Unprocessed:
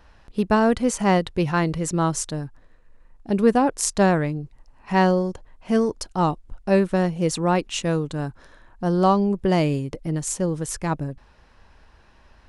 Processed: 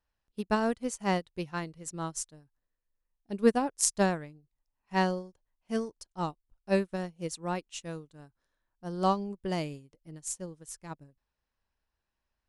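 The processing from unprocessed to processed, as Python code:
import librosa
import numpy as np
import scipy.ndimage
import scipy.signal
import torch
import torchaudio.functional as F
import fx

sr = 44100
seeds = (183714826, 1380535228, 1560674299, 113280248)

y = fx.high_shelf(x, sr, hz=3500.0, db=8.5)
y = fx.upward_expand(y, sr, threshold_db=-31.0, expansion=2.5)
y = y * librosa.db_to_amplitude(-4.5)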